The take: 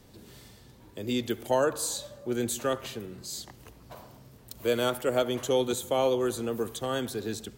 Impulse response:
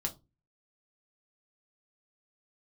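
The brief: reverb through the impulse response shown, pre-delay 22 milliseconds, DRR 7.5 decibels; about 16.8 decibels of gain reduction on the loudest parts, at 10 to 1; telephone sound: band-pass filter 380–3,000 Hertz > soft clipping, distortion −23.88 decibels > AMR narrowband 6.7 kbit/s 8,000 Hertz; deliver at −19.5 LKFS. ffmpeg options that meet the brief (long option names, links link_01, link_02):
-filter_complex "[0:a]acompressor=threshold=-38dB:ratio=10,asplit=2[link_01][link_02];[1:a]atrim=start_sample=2205,adelay=22[link_03];[link_02][link_03]afir=irnorm=-1:irlink=0,volume=-9dB[link_04];[link_01][link_04]amix=inputs=2:normalize=0,highpass=380,lowpass=3000,asoftclip=threshold=-31.5dB,volume=28.5dB" -ar 8000 -c:a libopencore_amrnb -b:a 6700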